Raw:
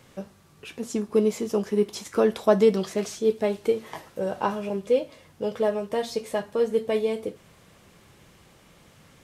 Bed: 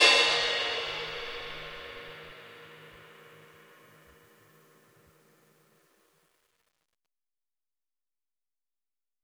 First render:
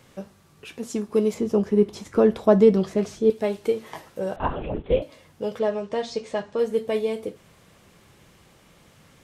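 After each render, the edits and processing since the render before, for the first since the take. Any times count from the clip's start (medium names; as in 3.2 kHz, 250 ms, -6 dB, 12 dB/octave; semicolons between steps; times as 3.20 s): 1.34–3.30 s: tilt EQ -2.5 dB/octave; 4.36–5.02 s: LPC vocoder at 8 kHz whisper; 5.59–6.59 s: low-pass 7.1 kHz 24 dB/octave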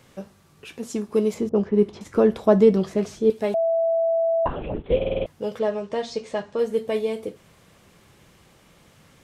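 1.49–2.01 s: level-controlled noise filter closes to 430 Hz, open at -14 dBFS; 3.54–4.46 s: bleep 661 Hz -18 dBFS; 4.96 s: stutter in place 0.05 s, 6 plays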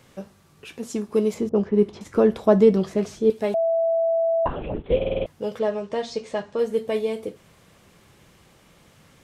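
no audible change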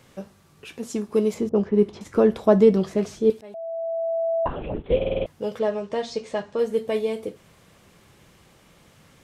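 3.41–5.09 s: fade in equal-power, from -22.5 dB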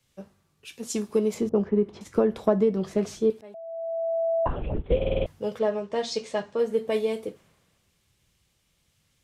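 compression 8:1, threshold -20 dBFS, peak gain reduction 10.5 dB; three bands expanded up and down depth 70%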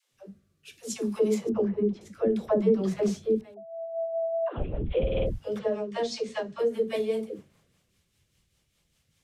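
rotary cabinet horn 0.6 Hz, later 5 Hz, at 2.94 s; phase dispersion lows, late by 121 ms, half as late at 360 Hz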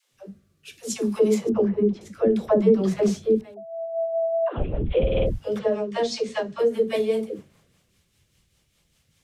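trim +5 dB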